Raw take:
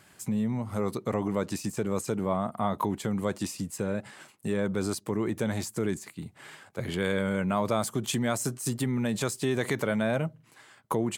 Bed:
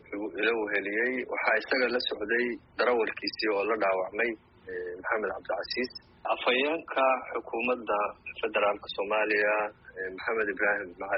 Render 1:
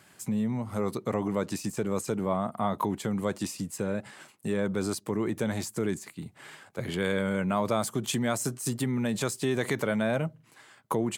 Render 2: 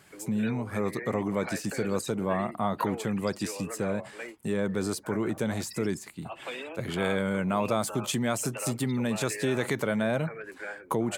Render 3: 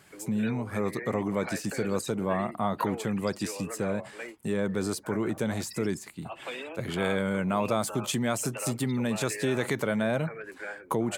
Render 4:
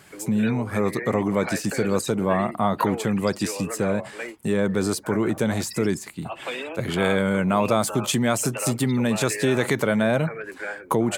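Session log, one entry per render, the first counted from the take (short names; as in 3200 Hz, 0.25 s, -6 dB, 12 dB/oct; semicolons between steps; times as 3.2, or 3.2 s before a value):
HPF 87 Hz
add bed -12.5 dB
nothing audible
gain +6.5 dB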